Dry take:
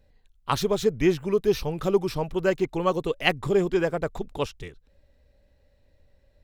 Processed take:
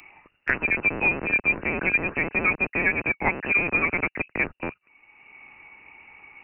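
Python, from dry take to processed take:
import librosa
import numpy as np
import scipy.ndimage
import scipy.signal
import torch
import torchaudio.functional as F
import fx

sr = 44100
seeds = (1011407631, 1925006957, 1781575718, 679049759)

y = fx.rattle_buzz(x, sr, strikes_db=-41.0, level_db=-19.0)
y = scipy.signal.sosfilt(scipy.signal.bessel(2, 380.0, 'highpass', norm='mag', fs=sr, output='sos'), y)
y = fx.freq_invert(y, sr, carrier_hz=2800)
y = fx.band_squash(y, sr, depth_pct=70)
y = y * 10.0 ** (2.0 / 20.0)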